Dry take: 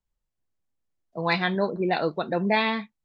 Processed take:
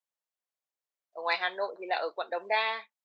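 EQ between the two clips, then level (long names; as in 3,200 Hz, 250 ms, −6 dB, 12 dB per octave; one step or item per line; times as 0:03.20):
high-pass filter 510 Hz 24 dB per octave
−4.0 dB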